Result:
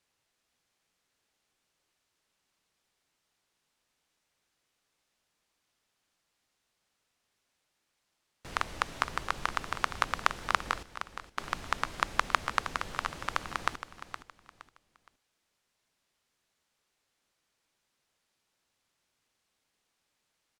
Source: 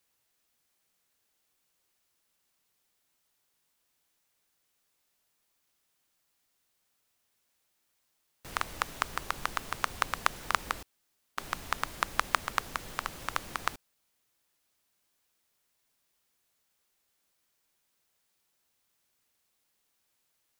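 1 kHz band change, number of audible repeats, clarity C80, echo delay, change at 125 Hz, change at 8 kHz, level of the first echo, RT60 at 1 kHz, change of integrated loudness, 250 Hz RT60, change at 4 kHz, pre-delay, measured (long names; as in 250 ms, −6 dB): +1.5 dB, 3, no reverb audible, 467 ms, +2.0 dB, −3.0 dB, −11.0 dB, no reverb audible, +1.0 dB, no reverb audible, +0.5 dB, no reverb audible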